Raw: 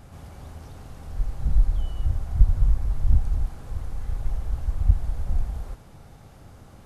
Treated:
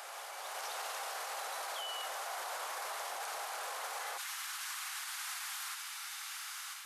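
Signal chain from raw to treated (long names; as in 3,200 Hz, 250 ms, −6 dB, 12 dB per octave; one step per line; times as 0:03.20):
Bessel high-pass filter 950 Hz, order 8, from 0:04.17 2,000 Hz
brickwall limiter −51.5 dBFS, peak gain reduction 10.5 dB
automatic gain control gain up to 5.5 dB
level +14 dB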